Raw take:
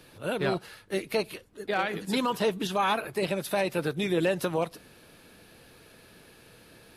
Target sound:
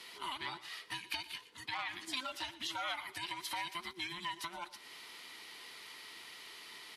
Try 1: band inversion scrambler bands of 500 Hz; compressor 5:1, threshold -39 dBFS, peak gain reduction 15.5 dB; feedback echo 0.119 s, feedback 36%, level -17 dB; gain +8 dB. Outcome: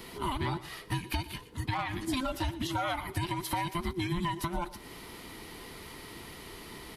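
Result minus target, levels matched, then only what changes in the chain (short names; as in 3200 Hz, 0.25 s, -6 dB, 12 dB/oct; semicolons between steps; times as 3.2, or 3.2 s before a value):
4000 Hz band -6.5 dB
add after compressor: band-pass 3600 Hz, Q 0.65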